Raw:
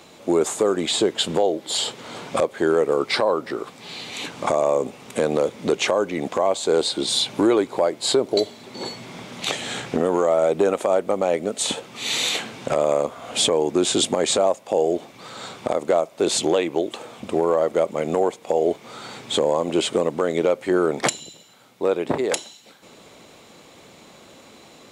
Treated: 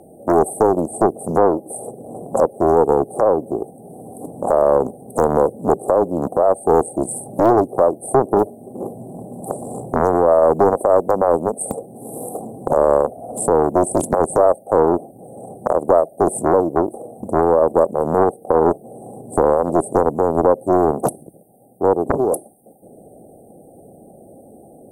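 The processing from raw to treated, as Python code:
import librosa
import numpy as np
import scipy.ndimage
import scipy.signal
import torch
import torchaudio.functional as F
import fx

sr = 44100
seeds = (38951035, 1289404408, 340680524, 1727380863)

y = fx.brickwall_bandstop(x, sr, low_hz=830.0, high_hz=8300.0)
y = fx.doppler_dist(y, sr, depth_ms=0.97)
y = y * 10.0 ** (6.0 / 20.0)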